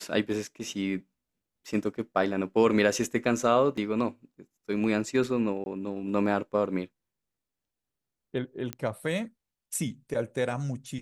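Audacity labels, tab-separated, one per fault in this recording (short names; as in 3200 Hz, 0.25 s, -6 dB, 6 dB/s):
3.770000	3.770000	gap 4.7 ms
5.640000	5.660000	gap 21 ms
8.730000	8.730000	pop -17 dBFS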